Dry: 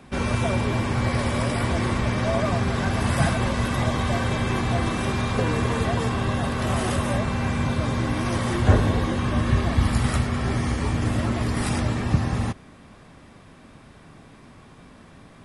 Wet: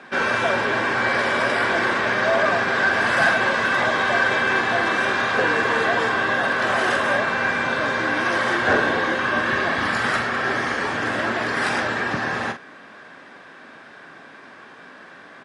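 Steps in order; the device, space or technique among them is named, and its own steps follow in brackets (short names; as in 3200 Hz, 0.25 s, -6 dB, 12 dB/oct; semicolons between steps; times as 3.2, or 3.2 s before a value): intercom (BPF 380–5000 Hz; bell 1600 Hz +11.5 dB 0.33 oct; soft clip -15.5 dBFS, distortion -23 dB; doubler 44 ms -9 dB); gain +6 dB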